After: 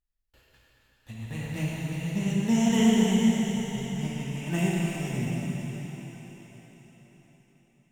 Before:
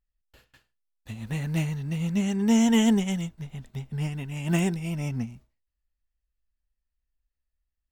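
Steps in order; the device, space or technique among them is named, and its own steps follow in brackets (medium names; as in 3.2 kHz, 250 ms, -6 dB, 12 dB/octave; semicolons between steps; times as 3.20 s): cathedral (reverberation RT60 4.9 s, pre-delay 8 ms, DRR -5.5 dB); trim -6 dB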